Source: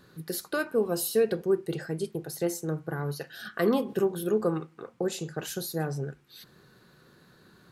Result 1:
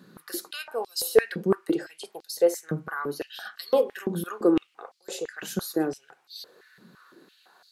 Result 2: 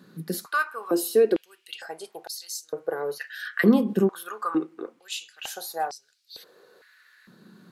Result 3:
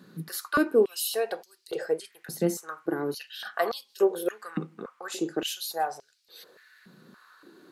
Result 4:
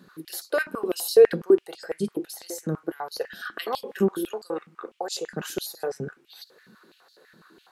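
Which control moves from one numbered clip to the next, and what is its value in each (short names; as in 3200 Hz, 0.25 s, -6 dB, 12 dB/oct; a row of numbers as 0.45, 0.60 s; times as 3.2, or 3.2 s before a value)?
stepped high-pass, rate: 5.9, 2.2, 3.5, 12 Hz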